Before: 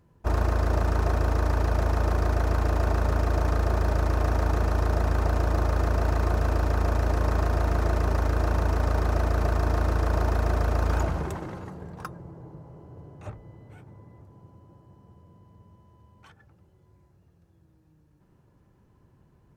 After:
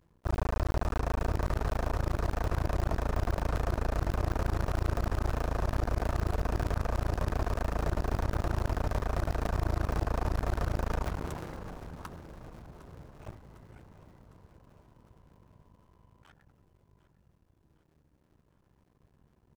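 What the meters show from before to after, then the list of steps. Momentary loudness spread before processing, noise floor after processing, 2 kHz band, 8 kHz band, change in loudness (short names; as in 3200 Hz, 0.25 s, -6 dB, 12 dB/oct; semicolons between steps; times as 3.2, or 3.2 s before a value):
14 LU, -69 dBFS, -6.0 dB, n/a, -7.0 dB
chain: cycle switcher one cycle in 2, muted; on a send: feedback echo 0.755 s, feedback 57%, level -15.5 dB; on the sum: gain -3.5 dB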